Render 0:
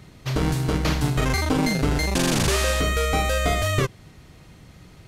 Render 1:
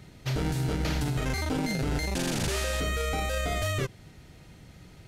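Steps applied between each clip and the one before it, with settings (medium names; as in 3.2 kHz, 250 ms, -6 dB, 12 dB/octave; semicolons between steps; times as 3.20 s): band-stop 1.1 kHz, Q 6.7; peak limiter -17.5 dBFS, peak gain reduction 8.5 dB; trim -3 dB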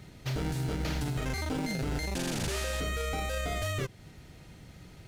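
in parallel at -1.5 dB: compression, threshold -37 dBFS, peak gain reduction 12 dB; on the sum: short-mantissa float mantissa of 4-bit; trim -5.5 dB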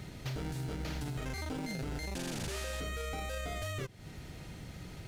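compression 2.5:1, threshold -45 dBFS, peak gain reduction 11 dB; trim +4.5 dB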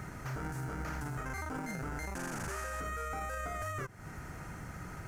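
FFT filter 530 Hz 0 dB, 1.4 kHz +12 dB, 3.7 kHz -13 dB, 6.2 kHz +1 dB; peak limiter -31 dBFS, peak gain reduction 7 dB; trim +1 dB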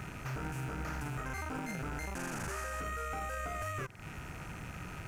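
rattle on loud lows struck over -51 dBFS, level -40 dBFS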